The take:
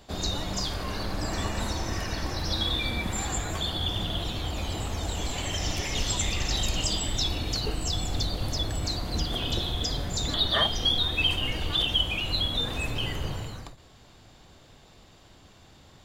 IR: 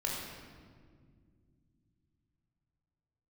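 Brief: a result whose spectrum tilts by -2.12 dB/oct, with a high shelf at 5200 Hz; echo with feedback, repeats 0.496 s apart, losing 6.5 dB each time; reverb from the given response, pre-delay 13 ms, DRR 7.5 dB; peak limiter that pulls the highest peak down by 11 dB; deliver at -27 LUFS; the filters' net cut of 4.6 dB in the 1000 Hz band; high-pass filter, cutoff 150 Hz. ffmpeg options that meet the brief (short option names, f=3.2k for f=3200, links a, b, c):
-filter_complex "[0:a]highpass=150,equalizer=f=1k:t=o:g=-6.5,highshelf=f=5.2k:g=6.5,alimiter=limit=-22dB:level=0:latency=1,aecho=1:1:496|992|1488|1984|2480|2976:0.473|0.222|0.105|0.0491|0.0231|0.0109,asplit=2[a][b];[1:a]atrim=start_sample=2205,adelay=13[c];[b][c]afir=irnorm=-1:irlink=0,volume=-12dB[d];[a][d]amix=inputs=2:normalize=0,volume=1.5dB"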